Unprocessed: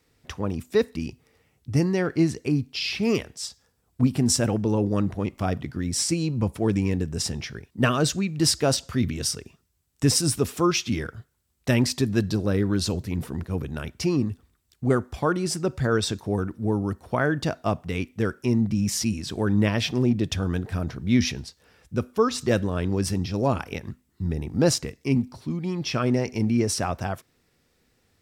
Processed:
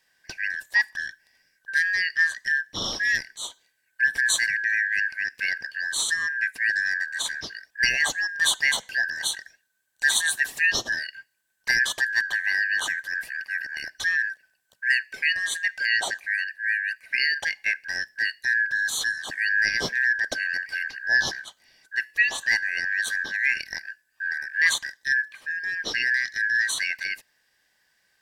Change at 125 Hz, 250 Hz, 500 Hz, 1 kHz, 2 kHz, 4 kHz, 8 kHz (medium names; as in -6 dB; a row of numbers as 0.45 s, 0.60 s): under -25 dB, -26.5 dB, -19.5 dB, -9.5 dB, +15.5 dB, +2.5 dB, -0.5 dB